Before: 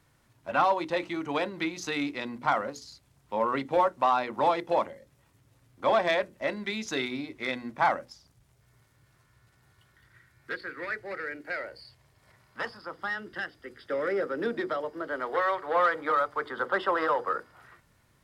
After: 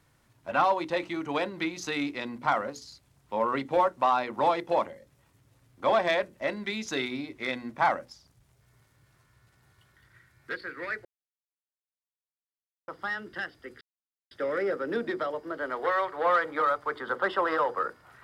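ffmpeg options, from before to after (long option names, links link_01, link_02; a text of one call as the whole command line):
ffmpeg -i in.wav -filter_complex "[0:a]asplit=4[link_01][link_02][link_03][link_04];[link_01]atrim=end=11.05,asetpts=PTS-STARTPTS,afade=type=out:start_time=11.046:duration=0.004:curve=hsin[link_05];[link_02]atrim=start=11.05:end=12.88,asetpts=PTS-STARTPTS,volume=0[link_06];[link_03]atrim=start=12.88:end=13.81,asetpts=PTS-STARTPTS,afade=type=in:duration=0.004:curve=hsin,afade=type=out:start_time=0.926:duration=0.004:curve=hsin,apad=pad_dur=0.5[link_07];[link_04]atrim=start=13.81,asetpts=PTS-STARTPTS,afade=type=in:duration=0.004:curve=hsin[link_08];[link_05][link_06][link_07][link_08]concat=n=4:v=0:a=1" out.wav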